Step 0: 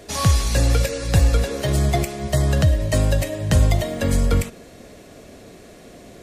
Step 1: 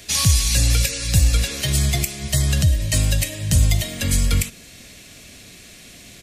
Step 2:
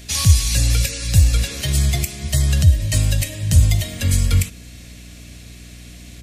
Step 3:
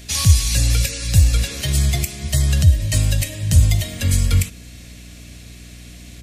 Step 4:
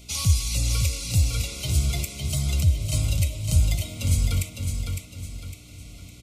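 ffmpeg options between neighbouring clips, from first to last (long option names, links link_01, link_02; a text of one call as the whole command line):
ffmpeg -i in.wav -filter_complex "[0:a]firequalizer=gain_entry='entry(120,0);entry(440,-11);entry(2400,9)':delay=0.05:min_phase=1,acrossover=split=730|5300[link_01][link_02][link_03];[link_02]alimiter=limit=-15.5dB:level=0:latency=1:release=361[link_04];[link_01][link_04][link_03]amix=inputs=3:normalize=0" out.wav
ffmpeg -i in.wav -af "equalizer=frequency=85:width=2.3:gain=9,aeval=exprs='val(0)+0.0141*(sin(2*PI*60*n/s)+sin(2*PI*2*60*n/s)/2+sin(2*PI*3*60*n/s)/3+sin(2*PI*4*60*n/s)/4+sin(2*PI*5*60*n/s)/5)':channel_layout=same,volume=-1.5dB" out.wav
ffmpeg -i in.wav -af anull out.wav
ffmpeg -i in.wav -filter_complex "[0:a]asuperstop=centerf=1700:order=20:qfactor=3.5,asplit=2[link_01][link_02];[link_02]aecho=0:1:557|1114|1671|2228|2785:0.531|0.207|0.0807|0.0315|0.0123[link_03];[link_01][link_03]amix=inputs=2:normalize=0,volume=-7.5dB" out.wav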